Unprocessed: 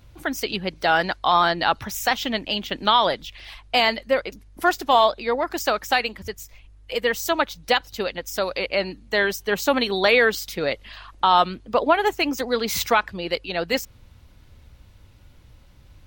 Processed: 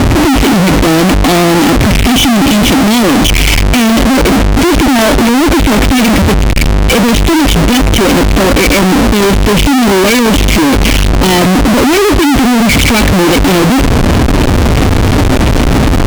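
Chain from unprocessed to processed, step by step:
formant resonators in series i
parametric band 3,100 Hz −12 dB 1.1 octaves
power curve on the samples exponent 0.35
fuzz pedal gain 49 dB, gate −56 dBFS
level +6.5 dB

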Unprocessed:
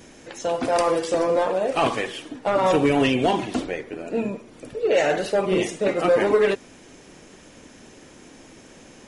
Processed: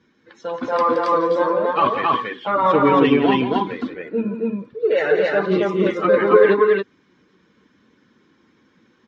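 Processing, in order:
spectral dynamics exaggerated over time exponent 1.5
loudspeaker in its box 130–3,900 Hz, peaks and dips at 200 Hz +5 dB, 440 Hz +4 dB, 680 Hz −9 dB, 1,100 Hz +10 dB, 1,500 Hz +4 dB, 2,700 Hz −5 dB
loudspeakers that aren't time-aligned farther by 59 metres −10 dB, 94 metres −1 dB
level +3 dB

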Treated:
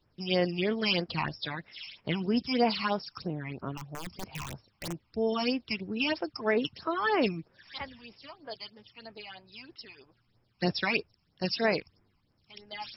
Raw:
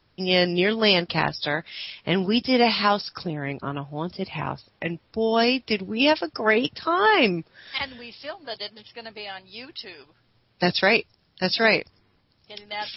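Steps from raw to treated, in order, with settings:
0:03.77–0:05.04: wrap-around overflow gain 22.5 dB
all-pass phaser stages 8, 3.1 Hz, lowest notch 470–4,200 Hz
level −6 dB

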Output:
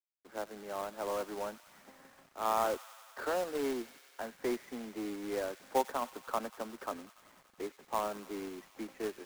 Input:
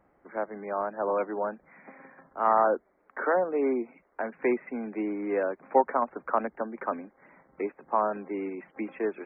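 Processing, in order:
running median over 15 samples
tape wow and flutter 22 cents
log-companded quantiser 4 bits
on a send: delay with a high-pass on its return 95 ms, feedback 80%, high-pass 1,900 Hz, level −12 dB
on the sum: level −8.5 dB

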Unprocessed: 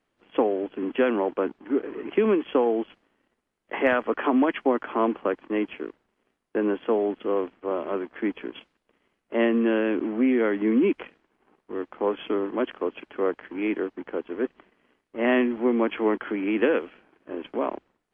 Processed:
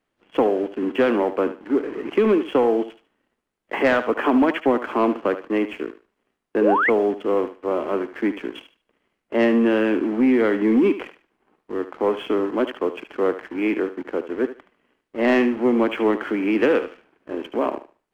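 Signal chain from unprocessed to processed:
leveller curve on the samples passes 1
feedback echo with a high-pass in the loop 74 ms, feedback 24%, high-pass 380 Hz, level −11 dB
sound drawn into the spectrogram rise, 0:06.61–0:06.90, 390–2,300 Hz −20 dBFS
level +1 dB

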